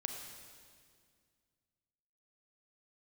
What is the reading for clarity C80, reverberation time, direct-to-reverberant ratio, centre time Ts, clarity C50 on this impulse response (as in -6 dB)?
5.5 dB, 2.0 s, 3.5 dB, 54 ms, 4.5 dB